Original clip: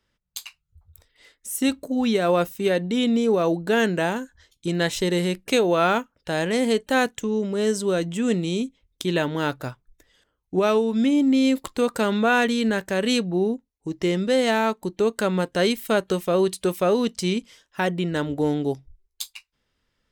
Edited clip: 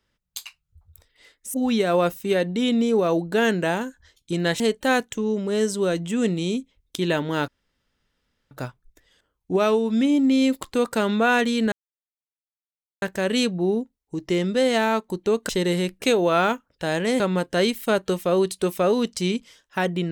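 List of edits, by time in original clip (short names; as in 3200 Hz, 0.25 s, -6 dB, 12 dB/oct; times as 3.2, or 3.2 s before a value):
1.54–1.89 cut
4.95–6.66 move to 15.22
9.54 insert room tone 1.03 s
12.75 insert silence 1.30 s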